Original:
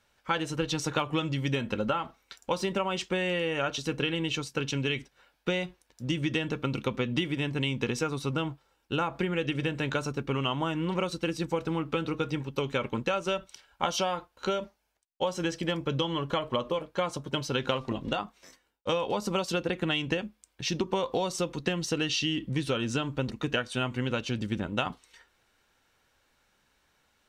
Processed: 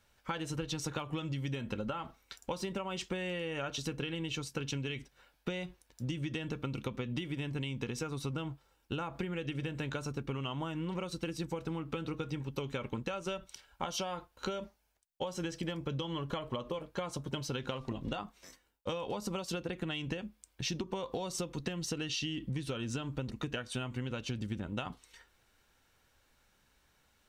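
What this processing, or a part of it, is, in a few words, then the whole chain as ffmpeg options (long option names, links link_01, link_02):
ASMR close-microphone chain: -af "lowshelf=frequency=150:gain=7.5,acompressor=threshold=-31dB:ratio=6,highshelf=frequency=8100:gain=6,volume=-2.5dB"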